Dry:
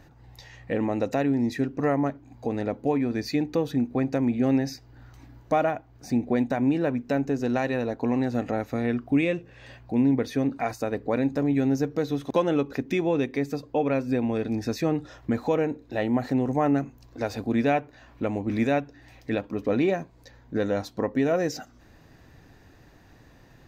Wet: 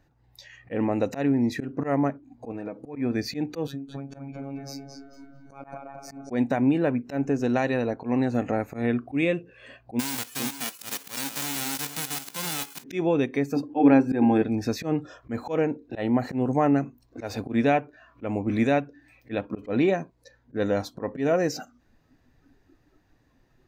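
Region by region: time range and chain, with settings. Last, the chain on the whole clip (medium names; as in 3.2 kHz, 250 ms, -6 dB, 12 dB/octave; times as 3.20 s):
2.51–2.96 s: peaking EQ 5.5 kHz +6 dB 0.34 oct + comb 6.3 ms, depth 51% + compression 16:1, threshold -30 dBFS
3.67–6.30 s: compression 12:1, threshold -31 dBFS + robot voice 138 Hz + filtered feedback delay 219 ms, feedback 57%, low-pass 4.5 kHz, level -3 dB
9.99–12.82 s: formants flattened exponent 0.1 + level held to a coarse grid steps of 16 dB + delay 471 ms -10.5 dB
13.56–14.42 s: hum notches 50/100/150/200/250/300/350/400/450 Hz + small resonant body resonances 300/810/1600 Hz, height 13 dB, ringing for 35 ms
whole clip: spectral noise reduction 14 dB; slow attack 104 ms; trim +1.5 dB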